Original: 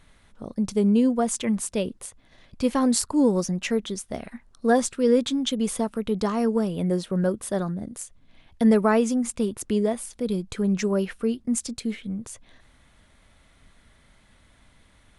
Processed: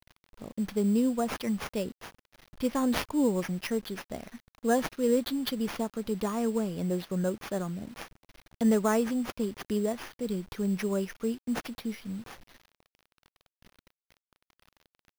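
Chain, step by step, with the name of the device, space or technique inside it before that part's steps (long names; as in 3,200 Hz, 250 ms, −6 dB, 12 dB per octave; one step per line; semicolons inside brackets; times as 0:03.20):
early 8-bit sampler (sample-rate reduction 7,900 Hz, jitter 0%; bit reduction 8 bits)
level −6 dB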